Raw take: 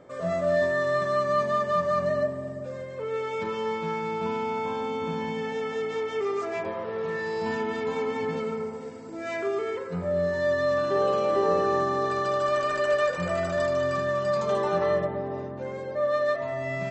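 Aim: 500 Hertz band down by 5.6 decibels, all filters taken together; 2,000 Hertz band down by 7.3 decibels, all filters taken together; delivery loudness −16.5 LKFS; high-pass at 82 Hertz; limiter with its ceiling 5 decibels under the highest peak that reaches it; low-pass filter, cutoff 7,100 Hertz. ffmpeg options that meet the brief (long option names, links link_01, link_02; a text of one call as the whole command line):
ffmpeg -i in.wav -af "highpass=82,lowpass=7100,equalizer=frequency=500:width_type=o:gain=-6.5,equalizer=frequency=2000:width_type=o:gain=-8,volume=16dB,alimiter=limit=-6dB:level=0:latency=1" out.wav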